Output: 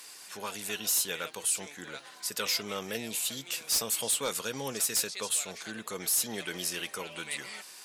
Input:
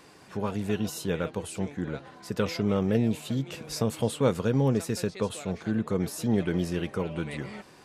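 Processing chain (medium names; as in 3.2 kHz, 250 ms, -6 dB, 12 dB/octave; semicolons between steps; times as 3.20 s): differentiator; sine folder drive 7 dB, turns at -25 dBFS; trim +3 dB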